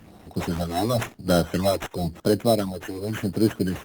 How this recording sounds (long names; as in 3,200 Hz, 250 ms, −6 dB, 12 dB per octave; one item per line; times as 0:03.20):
phaser sweep stages 8, 0.95 Hz, lowest notch 160–3,400 Hz
aliases and images of a low sample rate 4,600 Hz, jitter 0%
Opus